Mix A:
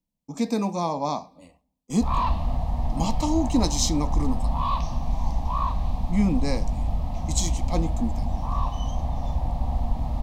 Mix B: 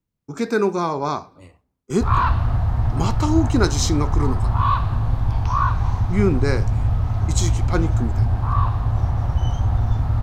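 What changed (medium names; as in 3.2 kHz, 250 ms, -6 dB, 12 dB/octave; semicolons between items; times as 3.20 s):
second sound: entry +0.65 s; master: remove static phaser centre 390 Hz, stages 6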